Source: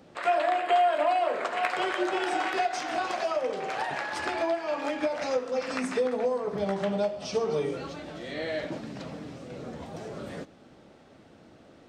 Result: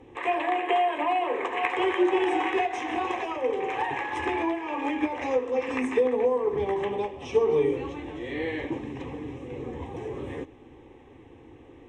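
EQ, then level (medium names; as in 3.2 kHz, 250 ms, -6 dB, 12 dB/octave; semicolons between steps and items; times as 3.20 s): distance through air 71 m; bass shelf 310 Hz +8 dB; static phaser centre 940 Hz, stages 8; +4.5 dB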